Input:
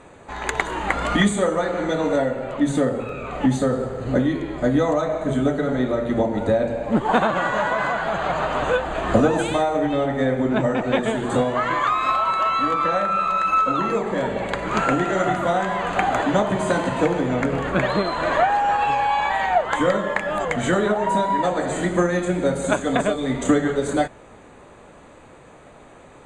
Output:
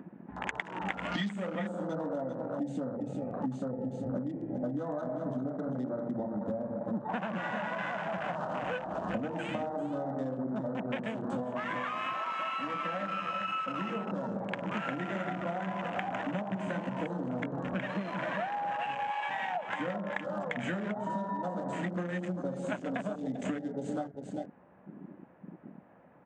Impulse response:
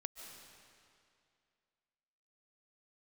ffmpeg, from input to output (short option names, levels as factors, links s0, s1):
-filter_complex "[0:a]aemphasis=mode=production:type=50fm,acrossover=split=700|1700[s0][s1][s2];[s2]acrusher=bits=4:mix=0:aa=0.000001[s3];[s0][s1][s3]amix=inputs=3:normalize=0,acompressor=mode=upward:threshold=0.0398:ratio=2.5,highpass=110,equalizer=f=190:t=q:w=4:g=8,equalizer=f=410:t=q:w=4:g=-8,equalizer=f=1200:t=q:w=4:g=-5,equalizer=f=1700:t=q:w=4:g=3,equalizer=f=2900:t=q:w=4:g=6,lowpass=f=7200:w=0.5412,lowpass=f=7200:w=1.3066,bandreject=f=50:t=h:w=6,bandreject=f=100:t=h:w=6,bandreject=f=150:t=h:w=6,aecho=1:1:395:0.355,afwtdn=0.0501,acompressor=threshold=0.0398:ratio=6,volume=0.631"